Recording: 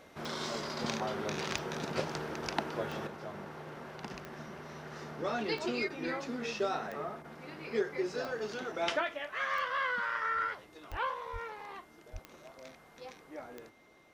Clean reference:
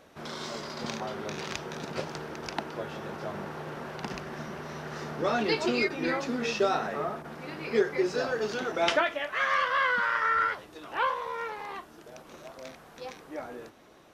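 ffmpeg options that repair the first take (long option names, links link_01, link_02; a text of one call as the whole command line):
ffmpeg -i in.wav -filter_complex "[0:a]adeclick=threshold=4,bandreject=frequency=2100:width=30,asplit=3[link_01][link_02][link_03];[link_01]afade=type=out:start_time=10.9:duration=0.02[link_04];[link_02]highpass=frequency=140:width=0.5412,highpass=frequency=140:width=1.3066,afade=type=in:start_time=10.9:duration=0.02,afade=type=out:start_time=11.02:duration=0.02[link_05];[link_03]afade=type=in:start_time=11.02:duration=0.02[link_06];[link_04][link_05][link_06]amix=inputs=3:normalize=0,asplit=3[link_07][link_08][link_09];[link_07]afade=type=out:start_time=11.32:duration=0.02[link_10];[link_08]highpass=frequency=140:width=0.5412,highpass=frequency=140:width=1.3066,afade=type=in:start_time=11.32:duration=0.02,afade=type=out:start_time=11.44:duration=0.02[link_11];[link_09]afade=type=in:start_time=11.44:duration=0.02[link_12];[link_10][link_11][link_12]amix=inputs=3:normalize=0,asplit=3[link_13][link_14][link_15];[link_13]afade=type=out:start_time=12.12:duration=0.02[link_16];[link_14]highpass=frequency=140:width=0.5412,highpass=frequency=140:width=1.3066,afade=type=in:start_time=12.12:duration=0.02,afade=type=out:start_time=12.24:duration=0.02[link_17];[link_15]afade=type=in:start_time=12.24:duration=0.02[link_18];[link_16][link_17][link_18]amix=inputs=3:normalize=0,asetnsamples=nb_out_samples=441:pad=0,asendcmd='3.07 volume volume 7dB',volume=0dB" out.wav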